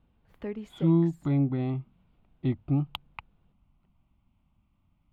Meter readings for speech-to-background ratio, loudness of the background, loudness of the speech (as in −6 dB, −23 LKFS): 12.5 dB, −40.5 LKFS, −28.0 LKFS